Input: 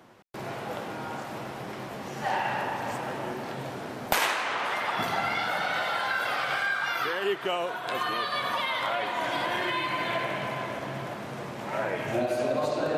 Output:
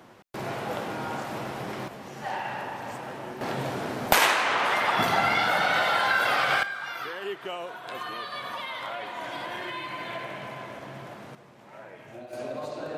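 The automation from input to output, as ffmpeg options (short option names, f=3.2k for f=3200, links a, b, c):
-af "asetnsamples=n=441:p=0,asendcmd='1.88 volume volume -4dB;3.41 volume volume 5dB;6.63 volume volume -6dB;11.35 volume volume -15.5dB;12.33 volume volume -7.5dB',volume=3dB"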